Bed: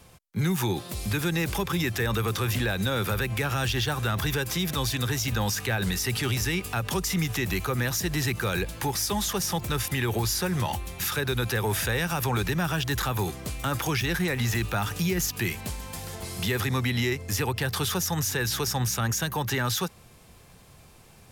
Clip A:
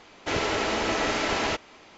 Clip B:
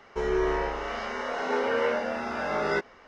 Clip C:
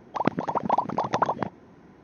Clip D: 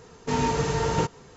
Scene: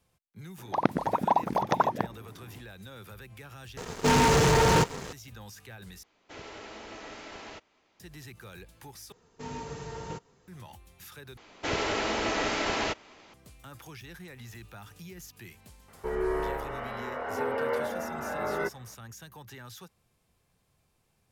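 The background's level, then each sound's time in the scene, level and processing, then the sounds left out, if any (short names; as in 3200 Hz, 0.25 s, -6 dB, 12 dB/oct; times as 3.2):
bed -19.5 dB
0.58 add C -1 dB
3.77 replace with D -5.5 dB + sample leveller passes 5
6.03 replace with A -18 dB
9.12 replace with D -14.5 dB
11.37 replace with A -3 dB
15.88 add B -3.5 dB + LPF 2000 Hz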